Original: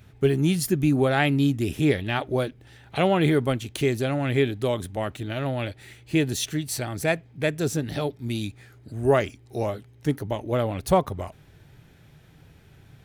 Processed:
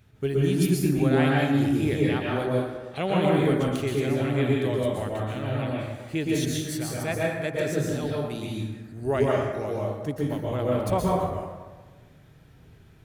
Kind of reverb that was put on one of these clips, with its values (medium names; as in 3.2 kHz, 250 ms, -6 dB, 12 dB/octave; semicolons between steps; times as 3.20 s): plate-style reverb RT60 1.3 s, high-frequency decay 0.5×, pre-delay 110 ms, DRR -4 dB; trim -7 dB